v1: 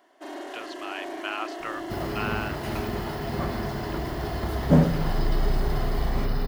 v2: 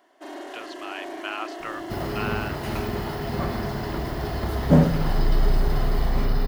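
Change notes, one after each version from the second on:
second sound: send on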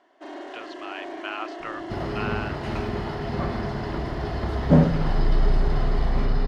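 master: add high-frequency loss of the air 96 metres

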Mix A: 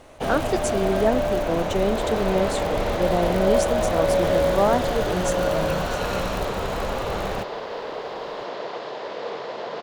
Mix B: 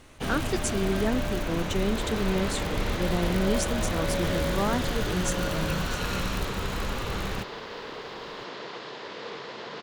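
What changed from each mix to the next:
master: add parametric band 640 Hz −13 dB 1.2 octaves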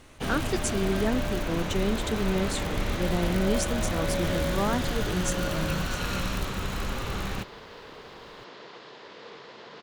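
second sound −7.0 dB

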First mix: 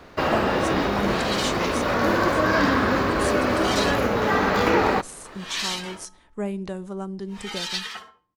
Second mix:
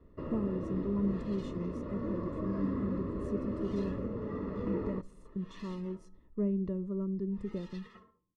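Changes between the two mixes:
first sound −10.0 dB
second sound −3.5 dB
master: add moving average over 57 samples

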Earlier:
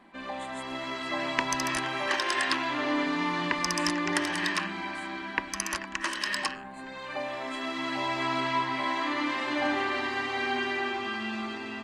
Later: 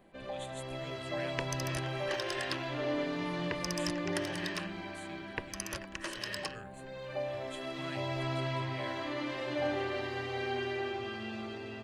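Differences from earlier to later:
speech +9.0 dB
master: add octave-band graphic EQ 125/250/500/1,000/2,000/4,000/8,000 Hz +11/−12/+7/−12/−7/−4/−9 dB

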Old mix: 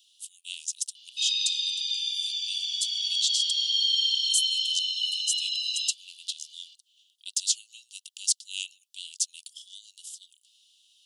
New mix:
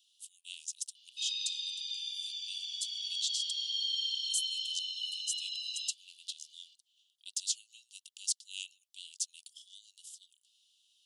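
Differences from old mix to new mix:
speech −8.0 dB
background −9.5 dB

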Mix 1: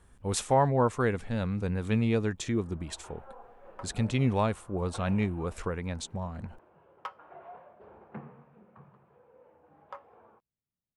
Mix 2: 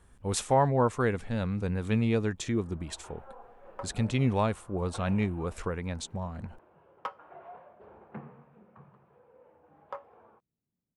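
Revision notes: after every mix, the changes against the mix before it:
second sound: add parametric band 260 Hz +11.5 dB 2.6 octaves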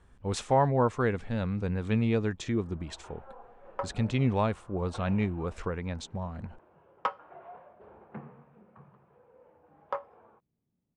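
speech: add low-pass filter 10,000 Hz 12 dB per octave
second sound +7.0 dB
master: add high-frequency loss of the air 63 metres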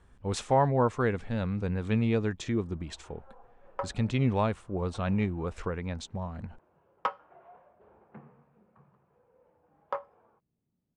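first sound −6.5 dB

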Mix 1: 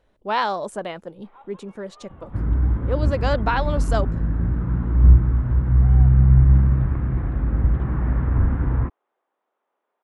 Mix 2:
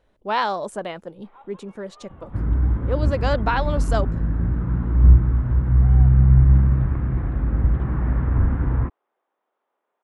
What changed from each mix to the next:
nothing changed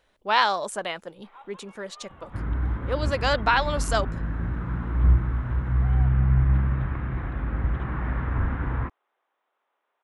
master: add tilt shelving filter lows −7 dB, about 820 Hz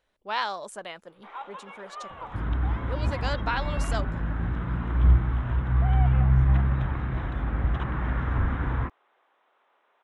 speech −8.0 dB
first sound +10.0 dB

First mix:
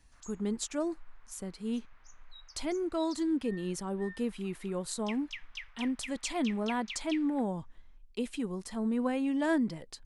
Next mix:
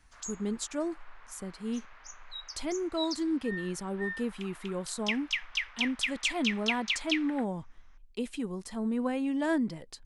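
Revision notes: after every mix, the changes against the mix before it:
background +11.5 dB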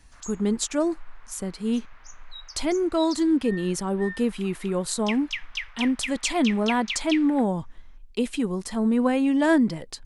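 speech +9.0 dB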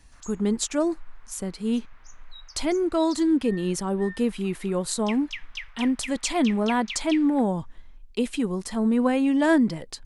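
background −4.5 dB

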